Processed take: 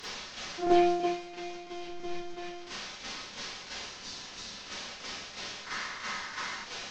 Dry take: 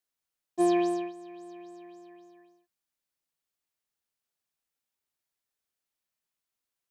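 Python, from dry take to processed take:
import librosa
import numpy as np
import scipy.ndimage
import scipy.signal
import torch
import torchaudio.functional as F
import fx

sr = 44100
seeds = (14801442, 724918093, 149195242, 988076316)

p1 = fx.delta_mod(x, sr, bps=32000, step_db=-39.0)
p2 = fx.low_shelf(p1, sr, hz=250.0, db=10.0, at=(1.84, 2.3))
p3 = fx.spec_box(p2, sr, start_s=5.61, length_s=0.99, low_hz=900.0, high_hz=2200.0, gain_db=9)
p4 = fx.fold_sine(p3, sr, drive_db=7, ceiling_db=-16.0)
p5 = p3 + F.gain(torch.from_numpy(p4), -9.0).numpy()
p6 = fx.tremolo_shape(p5, sr, shape='saw_down', hz=3.0, depth_pct=80)
p7 = fx.rev_schroeder(p6, sr, rt60_s=0.32, comb_ms=30, drr_db=-9.5)
p8 = fx.spec_repair(p7, sr, seeds[0], start_s=3.93, length_s=0.68, low_hz=290.0, high_hz=3400.0, source='after')
y = F.gain(torch.from_numpy(p8), -8.5).numpy()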